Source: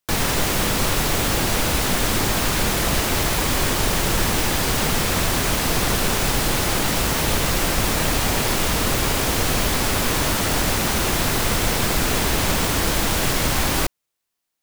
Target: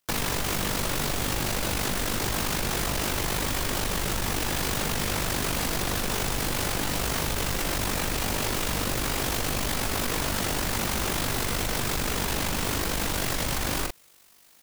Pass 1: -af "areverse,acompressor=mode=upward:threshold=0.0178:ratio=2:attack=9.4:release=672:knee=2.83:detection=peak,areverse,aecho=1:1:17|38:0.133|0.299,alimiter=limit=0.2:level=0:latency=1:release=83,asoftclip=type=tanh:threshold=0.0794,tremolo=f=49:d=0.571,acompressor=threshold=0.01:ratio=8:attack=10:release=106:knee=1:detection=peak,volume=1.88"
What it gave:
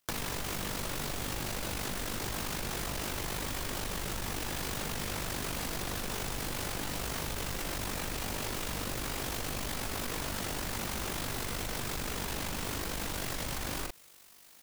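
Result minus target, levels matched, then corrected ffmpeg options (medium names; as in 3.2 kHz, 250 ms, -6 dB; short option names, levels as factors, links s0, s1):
compression: peak gain reduction +8.5 dB
-af "areverse,acompressor=mode=upward:threshold=0.0178:ratio=2:attack=9.4:release=672:knee=2.83:detection=peak,areverse,aecho=1:1:17|38:0.133|0.299,alimiter=limit=0.2:level=0:latency=1:release=83,asoftclip=type=tanh:threshold=0.0794,tremolo=f=49:d=0.571,acompressor=threshold=0.0299:ratio=8:attack=10:release=106:knee=1:detection=peak,volume=1.88"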